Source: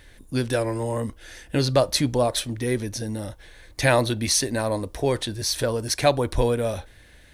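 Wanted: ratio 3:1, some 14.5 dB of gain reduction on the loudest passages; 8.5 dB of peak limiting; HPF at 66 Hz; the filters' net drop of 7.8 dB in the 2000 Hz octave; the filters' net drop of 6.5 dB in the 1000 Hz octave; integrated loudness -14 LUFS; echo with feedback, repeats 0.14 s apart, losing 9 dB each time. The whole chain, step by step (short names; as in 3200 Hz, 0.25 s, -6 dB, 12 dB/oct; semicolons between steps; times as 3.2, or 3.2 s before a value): HPF 66 Hz; bell 1000 Hz -8 dB; bell 2000 Hz -7.5 dB; compressor 3:1, threshold -38 dBFS; limiter -29 dBFS; feedback echo 0.14 s, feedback 35%, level -9 dB; gain +25 dB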